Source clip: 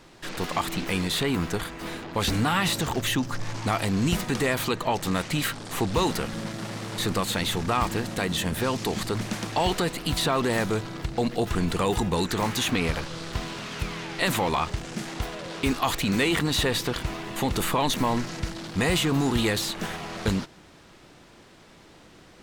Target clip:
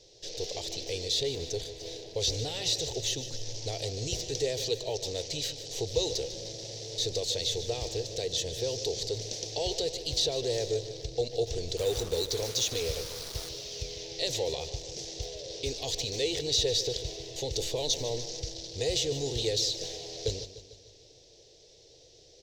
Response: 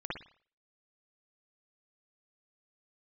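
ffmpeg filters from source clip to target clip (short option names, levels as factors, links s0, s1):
-filter_complex "[0:a]firequalizer=gain_entry='entry(130,0);entry(190,-21);entry(450,9);entry(1200,-29);entry(1800,-13);entry(3700,7);entry(5800,14);entry(9100,-9)':delay=0.05:min_phase=1,asettb=1/sr,asplit=3[s0][s1][s2];[s0]atrim=end=11.774[s3];[s1]atrim=start=11.77:end=13.49,asetpts=PTS-STARTPTS,afade=t=in:d=0.004:c=qsin,afade=t=out:st=1.716:d=0.004:c=qsin,acrusher=bits=4:mix=0:aa=0.5[s4];[s2]atrim=start=13.486[s5];[s3][s4]acrossfade=d=0.004:c1=hsin:c2=qsin[s6];[s6][s5]acrossfade=d=0.004:c1=qsin:c2=hsin,aecho=1:1:149|298|447|596|745|894:0.224|0.128|0.0727|0.0415|0.0236|0.0135,volume=0.422"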